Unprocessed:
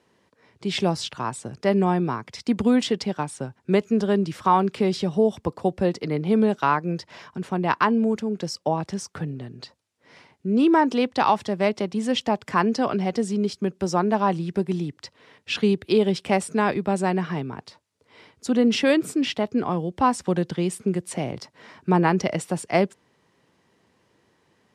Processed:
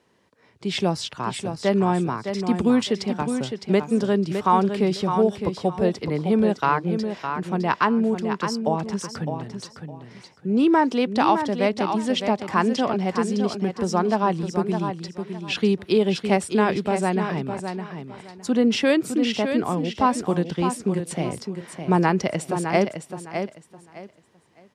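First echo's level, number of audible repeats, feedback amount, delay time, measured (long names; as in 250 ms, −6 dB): −7.5 dB, 3, 23%, 610 ms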